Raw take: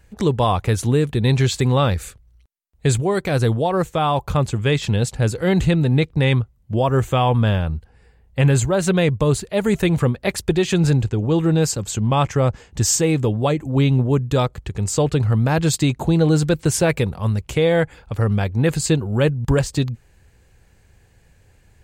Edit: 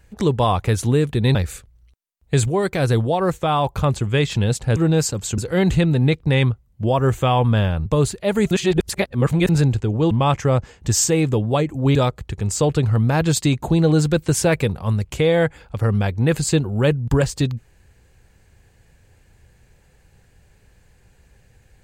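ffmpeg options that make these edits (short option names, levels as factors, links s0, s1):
-filter_complex "[0:a]asplit=9[s0][s1][s2][s3][s4][s5][s6][s7][s8];[s0]atrim=end=1.352[s9];[s1]atrim=start=1.868:end=5.282[s10];[s2]atrim=start=11.398:end=12.022[s11];[s3]atrim=start=5.278:end=7.762[s12];[s4]atrim=start=9.148:end=9.802[s13];[s5]atrim=start=9.798:end=10.782,asetpts=PTS-STARTPTS,areverse[s14];[s6]atrim=start=10.778:end=11.402[s15];[s7]atrim=start=12.018:end=13.862[s16];[s8]atrim=start=14.318[s17];[s9][s10]acrossfade=d=0.004:c1=hsin:c2=hsin[s18];[s18][s11]acrossfade=d=0.004:c1=hsin:c2=hsin[s19];[s19][s12]acrossfade=d=0.004:c1=hsin:c2=hsin[s20];[s20][s13]acrossfade=d=0.004:c1=hsin:c2=hsin[s21];[s21][s14]acrossfade=d=0.004:c1=hsin:c2=hsin[s22];[s22][s15]acrossfade=d=0.004:c1=hsin:c2=hsin[s23];[s23][s16]acrossfade=d=0.004:c1=hsin:c2=hsin[s24];[s24][s17]acrossfade=d=0.004:c1=hsin:c2=hsin"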